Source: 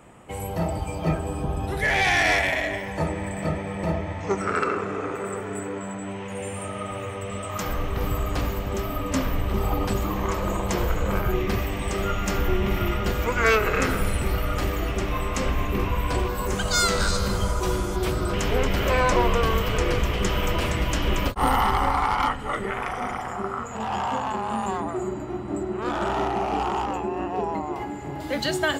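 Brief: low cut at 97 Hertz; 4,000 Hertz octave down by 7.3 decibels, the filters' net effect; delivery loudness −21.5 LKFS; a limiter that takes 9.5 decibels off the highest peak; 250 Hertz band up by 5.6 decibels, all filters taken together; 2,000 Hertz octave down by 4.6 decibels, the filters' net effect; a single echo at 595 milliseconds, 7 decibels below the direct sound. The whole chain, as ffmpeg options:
ffmpeg -i in.wav -af "highpass=97,equalizer=frequency=250:width_type=o:gain=8,equalizer=frequency=2000:width_type=o:gain=-4,equalizer=frequency=4000:width_type=o:gain=-8.5,alimiter=limit=-18dB:level=0:latency=1,aecho=1:1:595:0.447,volume=5.5dB" out.wav

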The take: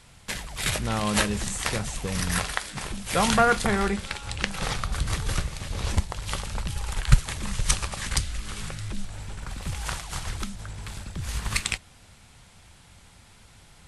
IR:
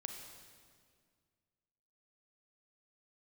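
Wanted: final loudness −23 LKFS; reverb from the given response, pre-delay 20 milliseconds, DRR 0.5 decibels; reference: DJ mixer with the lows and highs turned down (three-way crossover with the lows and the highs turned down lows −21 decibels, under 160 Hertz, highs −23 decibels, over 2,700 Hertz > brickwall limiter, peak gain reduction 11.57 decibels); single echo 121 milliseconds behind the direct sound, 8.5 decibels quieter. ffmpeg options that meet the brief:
-filter_complex "[0:a]aecho=1:1:121:0.376,asplit=2[link_01][link_02];[1:a]atrim=start_sample=2205,adelay=20[link_03];[link_02][link_03]afir=irnorm=-1:irlink=0,volume=2dB[link_04];[link_01][link_04]amix=inputs=2:normalize=0,acrossover=split=160 2700:gain=0.0891 1 0.0708[link_05][link_06][link_07];[link_05][link_06][link_07]amix=inputs=3:normalize=0,volume=8.5dB,alimiter=limit=-8dB:level=0:latency=1"

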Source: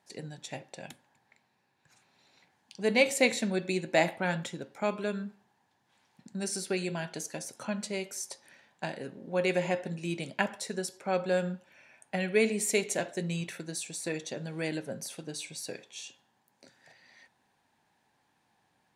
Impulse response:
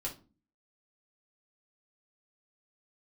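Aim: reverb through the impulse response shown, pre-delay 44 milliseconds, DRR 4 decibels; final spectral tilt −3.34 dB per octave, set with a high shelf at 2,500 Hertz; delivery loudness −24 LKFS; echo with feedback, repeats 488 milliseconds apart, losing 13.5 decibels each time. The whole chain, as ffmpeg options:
-filter_complex "[0:a]highshelf=frequency=2500:gain=4,aecho=1:1:488|976:0.211|0.0444,asplit=2[link_01][link_02];[1:a]atrim=start_sample=2205,adelay=44[link_03];[link_02][link_03]afir=irnorm=-1:irlink=0,volume=-5dB[link_04];[link_01][link_04]amix=inputs=2:normalize=0,volume=5.5dB"

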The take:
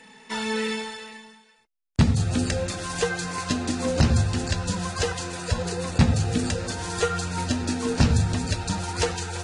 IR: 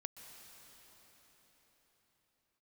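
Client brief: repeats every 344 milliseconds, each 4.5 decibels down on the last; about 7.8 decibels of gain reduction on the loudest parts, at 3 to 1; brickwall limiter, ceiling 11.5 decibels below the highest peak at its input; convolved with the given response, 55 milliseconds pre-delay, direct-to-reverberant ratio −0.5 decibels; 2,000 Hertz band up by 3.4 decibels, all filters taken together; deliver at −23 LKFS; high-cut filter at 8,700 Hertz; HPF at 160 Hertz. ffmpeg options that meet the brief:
-filter_complex "[0:a]highpass=160,lowpass=8700,equalizer=frequency=2000:width_type=o:gain=4.5,acompressor=threshold=-28dB:ratio=3,alimiter=level_in=1.5dB:limit=-24dB:level=0:latency=1,volume=-1.5dB,aecho=1:1:344|688|1032|1376|1720|2064|2408|2752|3096:0.596|0.357|0.214|0.129|0.0772|0.0463|0.0278|0.0167|0.01,asplit=2[link_01][link_02];[1:a]atrim=start_sample=2205,adelay=55[link_03];[link_02][link_03]afir=irnorm=-1:irlink=0,volume=4dB[link_04];[link_01][link_04]amix=inputs=2:normalize=0,volume=7dB"

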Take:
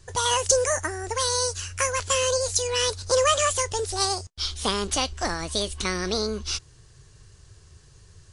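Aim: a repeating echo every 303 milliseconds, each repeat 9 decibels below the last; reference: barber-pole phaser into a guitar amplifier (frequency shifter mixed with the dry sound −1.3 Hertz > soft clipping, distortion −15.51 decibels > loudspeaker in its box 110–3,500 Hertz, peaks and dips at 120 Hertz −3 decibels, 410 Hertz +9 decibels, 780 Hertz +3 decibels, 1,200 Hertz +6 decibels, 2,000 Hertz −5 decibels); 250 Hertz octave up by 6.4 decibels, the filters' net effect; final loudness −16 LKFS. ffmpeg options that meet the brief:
ffmpeg -i in.wav -filter_complex "[0:a]equalizer=frequency=250:width_type=o:gain=7,aecho=1:1:303|606|909|1212:0.355|0.124|0.0435|0.0152,asplit=2[link_01][link_02];[link_02]afreqshift=-1.3[link_03];[link_01][link_03]amix=inputs=2:normalize=1,asoftclip=threshold=-19.5dB,highpass=110,equalizer=frequency=120:width_type=q:width=4:gain=-3,equalizer=frequency=410:width_type=q:width=4:gain=9,equalizer=frequency=780:width_type=q:width=4:gain=3,equalizer=frequency=1200:width_type=q:width=4:gain=6,equalizer=frequency=2000:width_type=q:width=4:gain=-5,lowpass=frequency=3500:width=0.5412,lowpass=frequency=3500:width=1.3066,volume=10.5dB" out.wav

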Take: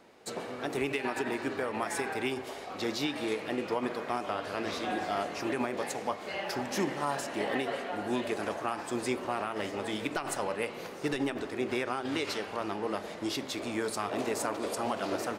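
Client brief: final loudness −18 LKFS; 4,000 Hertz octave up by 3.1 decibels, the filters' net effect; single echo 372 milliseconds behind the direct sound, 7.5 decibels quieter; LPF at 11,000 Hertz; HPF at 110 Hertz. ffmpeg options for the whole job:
ffmpeg -i in.wav -af "highpass=110,lowpass=11000,equalizer=frequency=4000:width_type=o:gain=4,aecho=1:1:372:0.422,volume=14.5dB" out.wav

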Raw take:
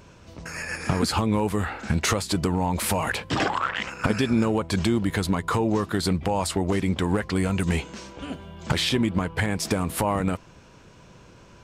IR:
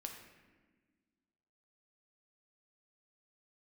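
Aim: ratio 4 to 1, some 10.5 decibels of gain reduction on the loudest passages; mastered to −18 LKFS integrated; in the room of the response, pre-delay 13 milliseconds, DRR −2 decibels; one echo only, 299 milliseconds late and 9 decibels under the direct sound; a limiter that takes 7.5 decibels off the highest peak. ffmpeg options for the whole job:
-filter_complex "[0:a]acompressor=threshold=-31dB:ratio=4,alimiter=level_in=1dB:limit=-24dB:level=0:latency=1,volume=-1dB,aecho=1:1:299:0.355,asplit=2[link_01][link_02];[1:a]atrim=start_sample=2205,adelay=13[link_03];[link_02][link_03]afir=irnorm=-1:irlink=0,volume=5dB[link_04];[link_01][link_04]amix=inputs=2:normalize=0,volume=13.5dB"

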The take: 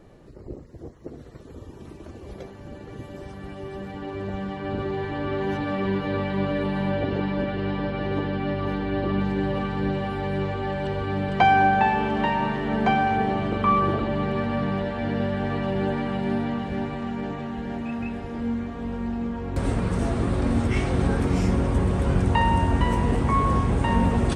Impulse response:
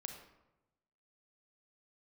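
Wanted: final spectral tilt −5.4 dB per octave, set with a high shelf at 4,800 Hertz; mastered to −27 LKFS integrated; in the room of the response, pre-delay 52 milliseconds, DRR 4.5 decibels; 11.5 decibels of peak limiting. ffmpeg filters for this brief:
-filter_complex "[0:a]highshelf=frequency=4800:gain=-8.5,alimiter=limit=-18.5dB:level=0:latency=1,asplit=2[link_01][link_02];[1:a]atrim=start_sample=2205,adelay=52[link_03];[link_02][link_03]afir=irnorm=-1:irlink=0,volume=-1.5dB[link_04];[link_01][link_04]amix=inputs=2:normalize=0,volume=-0.5dB"

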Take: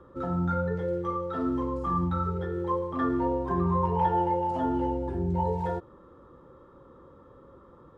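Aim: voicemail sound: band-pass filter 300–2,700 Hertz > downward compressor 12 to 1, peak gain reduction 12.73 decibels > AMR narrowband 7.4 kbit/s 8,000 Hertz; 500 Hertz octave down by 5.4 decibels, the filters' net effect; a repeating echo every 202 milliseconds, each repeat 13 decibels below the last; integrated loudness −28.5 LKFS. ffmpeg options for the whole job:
ffmpeg -i in.wav -af "highpass=300,lowpass=2700,equalizer=frequency=500:width_type=o:gain=-5.5,aecho=1:1:202|404|606:0.224|0.0493|0.0108,acompressor=threshold=-34dB:ratio=12,volume=10.5dB" -ar 8000 -c:a libopencore_amrnb -b:a 7400 out.amr

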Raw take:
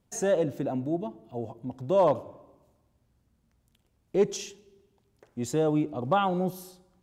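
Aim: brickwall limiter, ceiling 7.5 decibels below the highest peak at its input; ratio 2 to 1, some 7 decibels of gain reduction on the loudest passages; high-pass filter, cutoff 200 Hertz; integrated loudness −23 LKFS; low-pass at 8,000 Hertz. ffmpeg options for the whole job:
ffmpeg -i in.wav -af "highpass=200,lowpass=8000,acompressor=threshold=-31dB:ratio=2,volume=12.5dB,alimiter=limit=-12dB:level=0:latency=1" out.wav

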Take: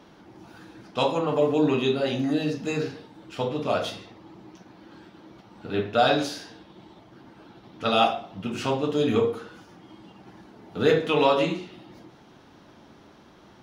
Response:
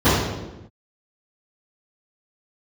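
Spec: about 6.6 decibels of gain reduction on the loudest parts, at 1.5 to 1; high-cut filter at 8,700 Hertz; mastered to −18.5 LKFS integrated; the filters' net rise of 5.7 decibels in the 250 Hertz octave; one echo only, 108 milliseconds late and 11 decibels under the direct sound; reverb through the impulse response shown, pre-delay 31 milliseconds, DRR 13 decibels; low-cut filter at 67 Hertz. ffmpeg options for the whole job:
-filter_complex "[0:a]highpass=67,lowpass=8700,equalizer=frequency=250:width_type=o:gain=7,acompressor=threshold=-32dB:ratio=1.5,aecho=1:1:108:0.282,asplit=2[link_01][link_02];[1:a]atrim=start_sample=2205,adelay=31[link_03];[link_02][link_03]afir=irnorm=-1:irlink=0,volume=-37.5dB[link_04];[link_01][link_04]amix=inputs=2:normalize=0,volume=9dB"

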